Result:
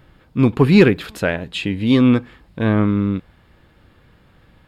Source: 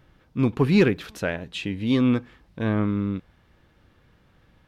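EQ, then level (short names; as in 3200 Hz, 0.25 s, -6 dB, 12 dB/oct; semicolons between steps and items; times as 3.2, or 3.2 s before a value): notch 5900 Hz, Q 5.6; +7.0 dB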